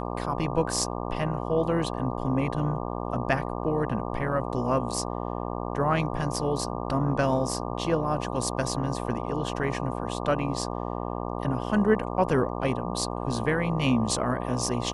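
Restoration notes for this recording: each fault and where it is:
buzz 60 Hz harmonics 20 -32 dBFS

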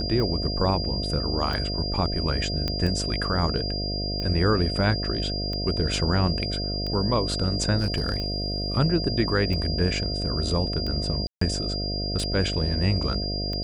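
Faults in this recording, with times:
buzz 50 Hz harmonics 14 -30 dBFS
tick 45 rpm -20 dBFS
tone 4800 Hz -30 dBFS
2.68 pop -13 dBFS
7.78–8.78 clipped -19.5 dBFS
11.27–11.41 gap 0.144 s

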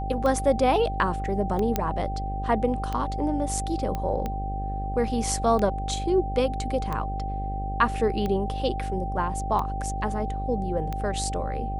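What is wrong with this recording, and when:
buzz 50 Hz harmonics 14 -31 dBFS
tick 45 rpm -17 dBFS
tone 780 Hz -32 dBFS
1.76 pop -9 dBFS
3.95 pop -17 dBFS

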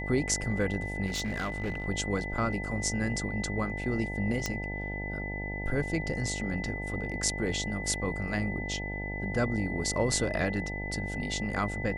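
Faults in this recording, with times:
buzz 50 Hz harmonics 18 -37 dBFS
tone 2000 Hz -37 dBFS
1.06–1.84 clipped -28 dBFS
4.46 pop -15 dBFS
6.41 gap 2.3 ms

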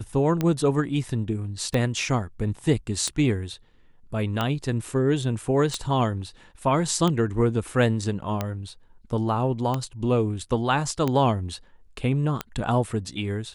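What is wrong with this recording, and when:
tick 45 rpm -12 dBFS

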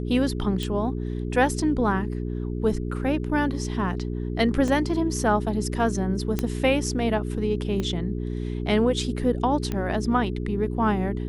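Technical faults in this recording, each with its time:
hum 60 Hz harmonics 7 -29 dBFS
0.63 pop
4.68 gap 2.3 ms
6.39 pop -11 dBFS
7.8 pop -16 dBFS
9.72 pop -15 dBFS

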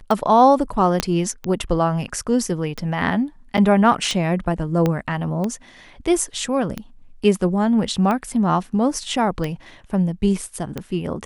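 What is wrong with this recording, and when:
tick 45 rpm
1 pop -4 dBFS
3.57–3.58 gap 7.8 ms
4.86 pop -8 dBFS

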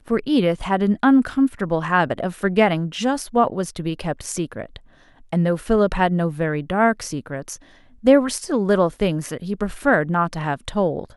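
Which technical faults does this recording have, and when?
3.68 gap 2.4 ms

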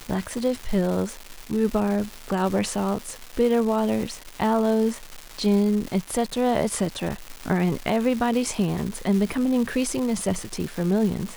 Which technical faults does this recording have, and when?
crackle 520/s -29 dBFS

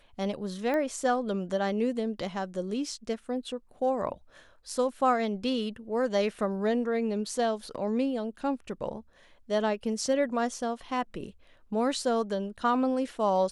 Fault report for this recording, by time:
0.74 pop -20 dBFS

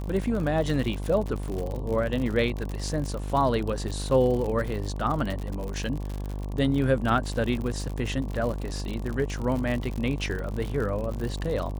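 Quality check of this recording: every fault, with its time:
buzz 50 Hz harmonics 23 -32 dBFS
crackle 68/s -30 dBFS

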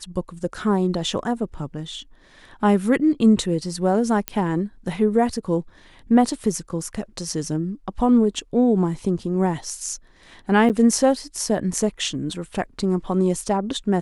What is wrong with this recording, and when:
4.28 pop -7 dBFS
10.69–10.7 gap 8.4 ms

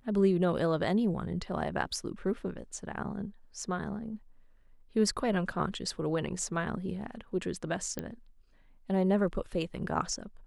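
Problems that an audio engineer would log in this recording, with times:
7.99 pop -20 dBFS

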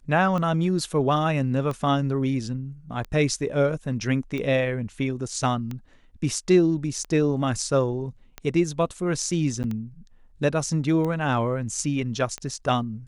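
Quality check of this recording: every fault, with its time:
tick 45 rpm -19 dBFS
9.63–9.64 gap 9.5 ms

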